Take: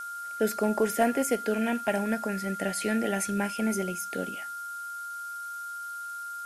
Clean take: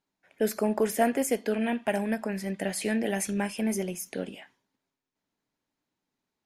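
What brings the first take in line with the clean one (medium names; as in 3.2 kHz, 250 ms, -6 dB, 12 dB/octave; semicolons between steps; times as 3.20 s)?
clip repair -15 dBFS; band-stop 1.4 kHz, Q 30; noise print and reduce 30 dB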